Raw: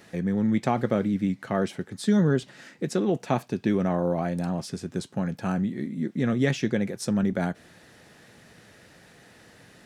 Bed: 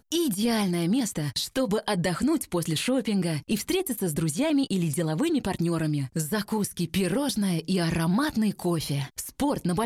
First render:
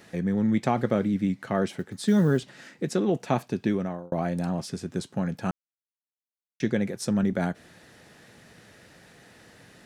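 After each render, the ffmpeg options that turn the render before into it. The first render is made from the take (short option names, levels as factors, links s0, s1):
-filter_complex "[0:a]asettb=1/sr,asplit=3[s0][s1][s2];[s0]atrim=end=1.694[s3];[s1]atrim=start=1.69:end=2.4,asetpts=PTS-STARTPTS,afade=t=in:d=0.004:c=qsin,afade=t=out:st=0.706:d=0.004:c=qsin,acrusher=bits=9:mode=log:mix=0:aa=0.000001[s4];[s2]atrim=start=2.396[s5];[s3][s4]acrossfade=d=0.004:c1=hsin:c2=qsin[s6];[s6][s5]acrossfade=d=0.004:c1=qsin:c2=hsin,asplit=4[s7][s8][s9][s10];[s7]atrim=end=4.12,asetpts=PTS-STARTPTS,afade=t=out:st=3.63:d=0.49[s11];[s8]atrim=start=4.12:end=5.51,asetpts=PTS-STARTPTS,afade=t=in:d=0.004:c=hsin,afade=t=out:st=1.386:d=0.004:c=hsin[s12];[s9]atrim=start=5.51:end=6.6,asetpts=PTS-STARTPTS,volume=0[s13];[s10]atrim=start=6.6,asetpts=PTS-STARTPTS,afade=t=in:d=0.004:c=hsin[s14];[s11][s12][s13][s14]concat=n=4:v=0:a=1"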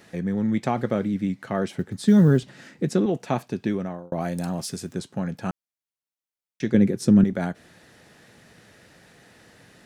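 -filter_complex "[0:a]asettb=1/sr,asplit=3[s0][s1][s2];[s0]atrim=end=1.774[s3];[s1]atrim=start=1.77:end=3.06,asetpts=PTS-STARTPTS,afade=t=in:d=0.004:c=qsin,afade=t=out:st=1.286:d=0.004:c=qsin,lowshelf=f=280:g=8.5[s4];[s2]atrim=start=3.056[s5];[s3][s4]acrossfade=d=0.004:c1=hsin:c2=qsin[s6];[s6][s5]acrossfade=d=0.004:c1=qsin:c2=hsin,asettb=1/sr,asplit=3[s7][s8][s9];[s7]atrim=end=4.204[s10];[s8]atrim=start=4.2:end=4.93,asetpts=PTS-STARTPTS,afade=t=in:d=0.004:c=qsin,afade=t=out:st=0.726:d=0.004:c=qsin,aemphasis=mode=production:type=50kf[s11];[s9]atrim=start=4.926[s12];[s10][s11]acrossfade=d=0.004:c1=hsin:c2=qsin[s13];[s13][s12]acrossfade=d=0.004:c1=qsin:c2=hsin,asettb=1/sr,asplit=3[s14][s15][s16];[s14]atrim=end=6.744[s17];[s15]atrim=start=6.74:end=7.24,asetpts=PTS-STARTPTS,afade=t=in:d=0.004:c=qsin,afade=t=out:st=0.496:d=0.004:c=qsin,lowshelf=f=480:t=q:w=1.5:g=8.5[s18];[s16]atrim=start=7.236[s19];[s17][s18]acrossfade=d=0.004:c1=hsin:c2=qsin[s20];[s20][s19]acrossfade=d=0.004:c1=qsin:c2=hsin"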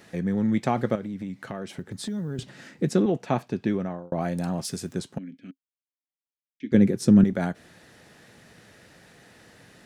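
-filter_complex "[0:a]asettb=1/sr,asplit=3[s0][s1][s2];[s0]atrim=end=0.954[s3];[s1]atrim=start=0.95:end=2.39,asetpts=PTS-STARTPTS,afade=t=in:d=0.004:c=qsin,afade=t=out:st=1.436:d=0.004:c=qsin,acompressor=threshold=0.0316:ratio=5:attack=3.2:release=140:knee=1:detection=peak[s4];[s2]atrim=start=2.386[s5];[s3][s4]acrossfade=d=0.004:c1=hsin:c2=qsin[s6];[s6][s5]acrossfade=d=0.004:c1=qsin:c2=hsin,asettb=1/sr,asplit=3[s7][s8][s9];[s7]atrim=end=3.024[s10];[s8]atrim=start=3.02:end=4.65,asetpts=PTS-STARTPTS,afade=t=in:d=0.004:c=qsin,afade=t=out:st=1.626:d=0.004:c=qsin,highshelf=f=6200:g=-9[s11];[s9]atrim=start=4.646[s12];[s10][s11]acrossfade=d=0.004:c1=hsin:c2=qsin[s13];[s13][s12]acrossfade=d=0.004:c1=qsin:c2=hsin,asettb=1/sr,asplit=3[s14][s15][s16];[s14]atrim=end=5.184[s17];[s15]atrim=start=5.18:end=6.72,asetpts=PTS-STARTPTS,afade=t=in:d=0.004:c=qsin,afade=t=out:st=1.536:d=0.004:c=qsin,asplit=3[s18][s19][s20];[s18]bandpass=f=270:t=q:w=8,volume=1[s21];[s19]bandpass=f=2290:t=q:w=8,volume=0.501[s22];[s20]bandpass=f=3010:t=q:w=8,volume=0.355[s23];[s21][s22][s23]amix=inputs=3:normalize=0[s24];[s16]atrim=start=6.716[s25];[s17][s24]acrossfade=d=0.004:c1=hsin:c2=qsin[s26];[s26][s25]acrossfade=d=0.004:c1=qsin:c2=hsin"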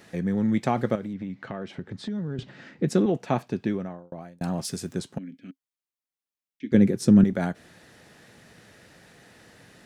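-filter_complex "[0:a]asettb=1/sr,asplit=3[s0][s1][s2];[s0]atrim=end=1.134[s3];[s1]atrim=start=1.13:end=2.88,asetpts=PTS-STARTPTS,afade=t=in:d=0.004:c=qsin,afade=t=out:st=1.746:d=0.004:c=qsin,lowpass=3800[s4];[s2]atrim=start=2.876[s5];[s3][s4]acrossfade=d=0.004:c1=hsin:c2=qsin[s6];[s6][s5]acrossfade=d=0.004:c1=qsin:c2=hsin,asplit=2[s7][s8];[s7]atrim=end=4.41,asetpts=PTS-STARTPTS,afade=t=out:st=3.56:d=0.85[s9];[s8]atrim=start=4.41,asetpts=PTS-STARTPTS,afade=t=in:d=0.004:c=hsin[s10];[s9][s10]concat=n=2:v=0:a=1"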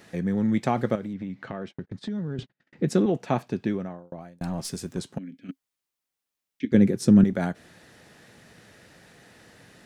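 -filter_complex "[0:a]asettb=1/sr,asplit=3[s0][s1][s2];[s0]atrim=end=1.524[s3];[s1]atrim=start=1.52:end=2.73,asetpts=PTS-STARTPTS,afade=t=in:d=0.004:c=qsin,afade=t=out:st=1.206:d=0.004:c=qsin,agate=range=0.00631:threshold=0.00708:ratio=16:release=100:detection=peak[s4];[s2]atrim=start=2.726[s5];[s3][s4]acrossfade=d=0.004:c1=hsin:c2=qsin[s6];[s6][s5]acrossfade=d=0.004:c1=qsin:c2=hsin,asettb=1/sr,asplit=3[s7][s8][s9];[s7]atrim=end=4.164[s10];[s8]atrim=start=4.16:end=4.98,asetpts=PTS-STARTPTS,afade=t=in:d=0.004:c=qsin,afade=t=out:st=0.816:d=0.004:c=qsin,aeval=exprs='(tanh(11.2*val(0)+0.35)-tanh(0.35))/11.2':c=same[s11];[s9]atrim=start=4.976[s12];[s10][s11]acrossfade=d=0.004:c1=hsin:c2=qsin[s13];[s13][s12]acrossfade=d=0.004:c1=qsin:c2=hsin,asplit=3[s14][s15][s16];[s14]atrim=end=5.492[s17];[s15]atrim=start=5.488:end=6.652,asetpts=PTS-STARTPTS,volume=2.24[s18];[s16]atrim=start=6.648[s19];[s17][s18]acrossfade=d=0.004:c1=hsin:c2=hsin[s20];[s20][s19]acrossfade=d=0.004:c1=hsin:c2=hsin"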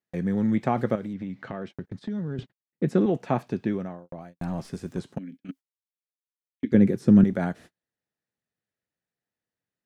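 -filter_complex "[0:a]acrossover=split=2500[s0][s1];[s1]acompressor=threshold=0.00282:ratio=4:attack=1:release=60[s2];[s0][s2]amix=inputs=2:normalize=0,agate=range=0.01:threshold=0.00631:ratio=16:detection=peak"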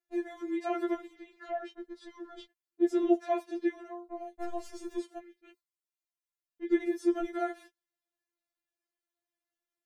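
-af "afftfilt=real='re*4*eq(mod(b,16),0)':imag='im*4*eq(mod(b,16),0)':win_size=2048:overlap=0.75"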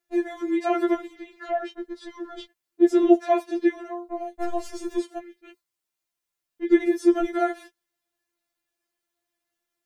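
-af "volume=2.82"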